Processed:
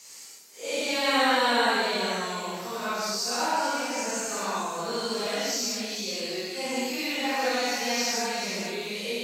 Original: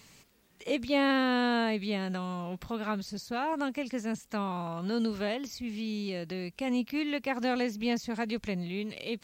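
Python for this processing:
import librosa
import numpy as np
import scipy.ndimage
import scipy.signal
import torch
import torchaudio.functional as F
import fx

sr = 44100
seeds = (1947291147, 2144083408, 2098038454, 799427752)

p1 = fx.phase_scramble(x, sr, seeds[0], window_ms=200)
p2 = scipy.signal.sosfilt(scipy.signal.butter(2, 410.0, 'highpass', fs=sr, output='sos'), p1)
p3 = fx.band_shelf(p2, sr, hz=7800.0, db=11.0, octaves=1.7)
p4 = p3 + fx.echo_single(p3, sr, ms=434, db=-9.5, dry=0)
y = fx.rev_gated(p4, sr, seeds[1], gate_ms=230, shape='flat', drr_db=-5.5)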